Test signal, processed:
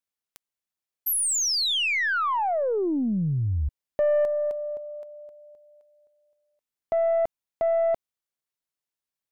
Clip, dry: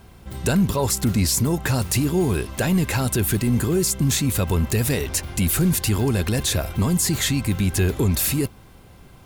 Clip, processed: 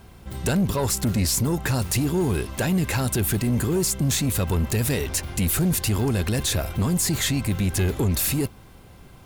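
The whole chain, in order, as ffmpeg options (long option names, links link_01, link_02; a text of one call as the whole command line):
ffmpeg -i in.wav -af "aeval=exprs='(tanh(6.31*val(0)+0.15)-tanh(0.15))/6.31':channel_layout=same" out.wav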